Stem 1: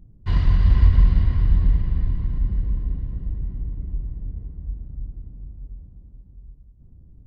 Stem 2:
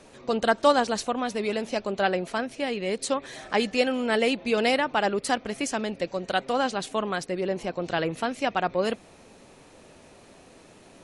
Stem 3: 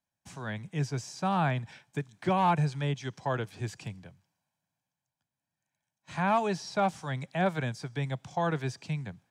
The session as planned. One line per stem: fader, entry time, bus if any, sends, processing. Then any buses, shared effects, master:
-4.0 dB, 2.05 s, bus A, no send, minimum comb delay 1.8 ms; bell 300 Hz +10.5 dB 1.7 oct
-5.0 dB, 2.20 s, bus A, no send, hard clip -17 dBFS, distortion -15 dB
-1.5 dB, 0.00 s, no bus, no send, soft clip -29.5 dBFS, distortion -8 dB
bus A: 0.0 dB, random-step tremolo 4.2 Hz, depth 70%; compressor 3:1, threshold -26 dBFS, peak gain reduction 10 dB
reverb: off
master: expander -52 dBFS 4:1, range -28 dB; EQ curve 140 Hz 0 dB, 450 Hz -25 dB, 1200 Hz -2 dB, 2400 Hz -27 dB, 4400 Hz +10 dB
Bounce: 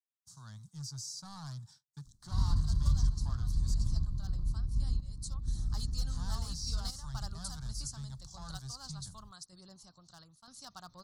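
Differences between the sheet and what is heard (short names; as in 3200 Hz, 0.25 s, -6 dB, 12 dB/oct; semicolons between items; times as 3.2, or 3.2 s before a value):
stem 2 -5.0 dB -> -13.5 dB; stem 3 -1.5 dB -> -7.5 dB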